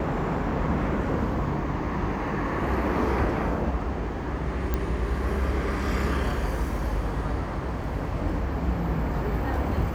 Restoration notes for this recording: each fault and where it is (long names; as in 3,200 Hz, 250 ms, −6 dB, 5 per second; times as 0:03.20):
0:04.74: click −13 dBFS